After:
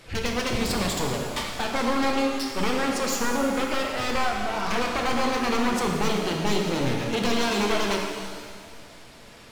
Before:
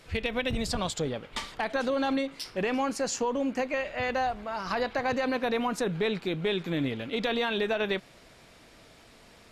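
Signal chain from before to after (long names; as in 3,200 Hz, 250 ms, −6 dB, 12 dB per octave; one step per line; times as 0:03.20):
wavefolder on the positive side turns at −31 dBFS
reverb with rising layers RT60 1.8 s, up +7 semitones, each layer −8 dB, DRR 1 dB
level +4 dB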